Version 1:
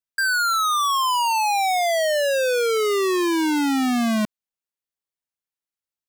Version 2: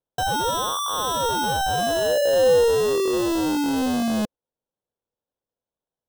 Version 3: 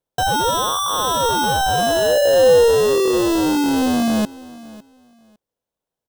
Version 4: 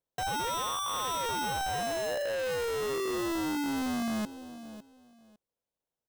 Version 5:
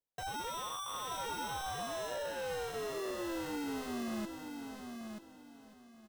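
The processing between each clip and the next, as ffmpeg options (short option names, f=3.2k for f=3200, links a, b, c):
-af "acrusher=samples=19:mix=1:aa=0.000001,equalizer=f=500:t=o:w=0.33:g=9,equalizer=f=1.25k:t=o:w=0.33:g=-7,equalizer=f=2k:t=o:w=0.33:g=-9,equalizer=f=12.5k:t=o:w=0.33:g=-3,volume=-2dB"
-af "aecho=1:1:554|1108:0.1|0.02,volume=5dB"
-af "asoftclip=type=hard:threshold=-23.5dB,volume=-7.5dB"
-filter_complex "[0:a]flanger=delay=0.2:depth=7.6:regen=-52:speed=0.55:shape=triangular,asplit=2[a][b];[b]aecho=0:1:932|1864|2796:0.473|0.104|0.0229[c];[a][c]amix=inputs=2:normalize=0,volume=-4dB"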